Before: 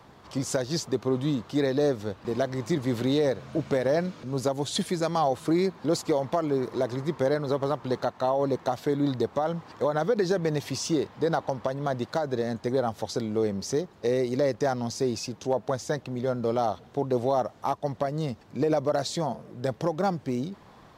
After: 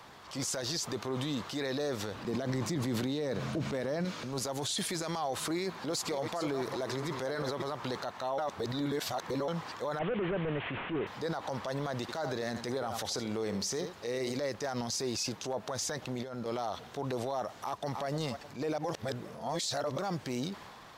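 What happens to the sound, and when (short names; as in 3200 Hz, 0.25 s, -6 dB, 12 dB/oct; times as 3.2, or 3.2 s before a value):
2.14–4.05 bell 190 Hz +11 dB 2.2 oct
5.6–7.73 reverse delay 0.292 s, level -11.5 dB
8.38–9.48 reverse
9.99–11.07 delta modulation 16 kbps, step -40.5 dBFS
12.01–14.38 echo 76 ms -14.5 dB
16.02–16.46 negative-ratio compressor -33 dBFS, ratio -0.5
17.59–18.06 echo throw 0.3 s, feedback 35%, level -17.5 dB
18.78–19.98 reverse
whole clip: tilt shelf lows -6 dB, about 700 Hz; transient shaper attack -8 dB, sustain +4 dB; limiter -25 dBFS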